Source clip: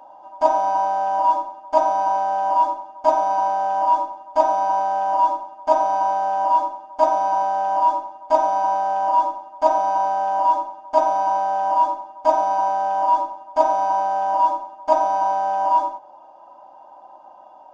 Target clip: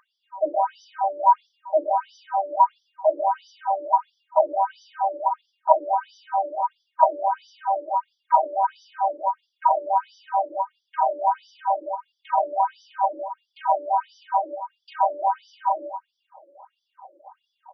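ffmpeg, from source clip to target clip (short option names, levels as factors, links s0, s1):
-filter_complex "[0:a]asplit=2[s0][s1];[s1]adelay=26,volume=0.266[s2];[s0][s2]amix=inputs=2:normalize=0,afftfilt=real='re*between(b*sr/1024,400*pow(4300/400,0.5+0.5*sin(2*PI*1.5*pts/sr))/1.41,400*pow(4300/400,0.5+0.5*sin(2*PI*1.5*pts/sr))*1.41)':imag='im*between(b*sr/1024,400*pow(4300/400,0.5+0.5*sin(2*PI*1.5*pts/sr))/1.41,400*pow(4300/400,0.5+0.5*sin(2*PI*1.5*pts/sr))*1.41)':win_size=1024:overlap=0.75,volume=1.19"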